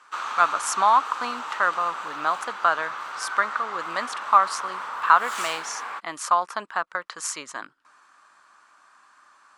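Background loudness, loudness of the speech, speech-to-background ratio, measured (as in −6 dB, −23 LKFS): −32.5 LKFS, −24.5 LKFS, 8.0 dB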